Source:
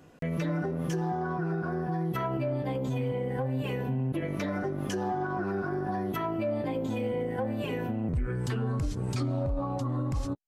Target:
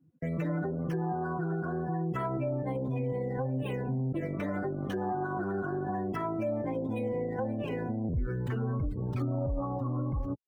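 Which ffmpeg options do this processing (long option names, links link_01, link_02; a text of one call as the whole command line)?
ffmpeg -i in.wav -filter_complex "[0:a]afftdn=noise_reduction=31:noise_floor=-42,acrossover=split=120|1100|3200[link_01][link_02][link_03][link_04];[link_04]acrusher=samples=13:mix=1:aa=0.000001:lfo=1:lforange=13:lforate=2.1[link_05];[link_01][link_02][link_03][link_05]amix=inputs=4:normalize=0,volume=-1.5dB" out.wav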